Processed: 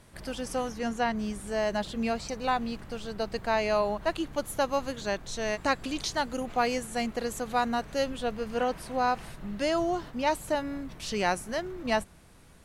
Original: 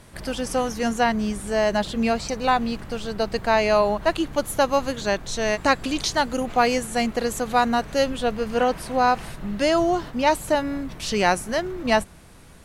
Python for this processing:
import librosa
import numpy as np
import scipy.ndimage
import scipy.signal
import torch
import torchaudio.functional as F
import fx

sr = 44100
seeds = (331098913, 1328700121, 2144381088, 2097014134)

y = fx.high_shelf(x, sr, hz=fx.line((0.69, 6000.0), (1.15, 9800.0)), db=-8.5, at=(0.69, 1.15), fade=0.02)
y = F.gain(torch.from_numpy(y), -7.5).numpy()